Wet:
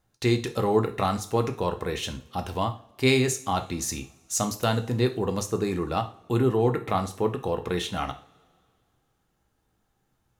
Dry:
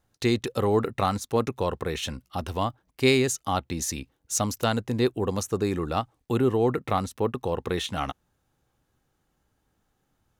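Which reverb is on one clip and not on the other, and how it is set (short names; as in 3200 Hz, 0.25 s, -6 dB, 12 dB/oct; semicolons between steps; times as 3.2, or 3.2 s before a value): two-slope reverb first 0.37 s, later 2.3 s, from -26 dB, DRR 5 dB; gain -1 dB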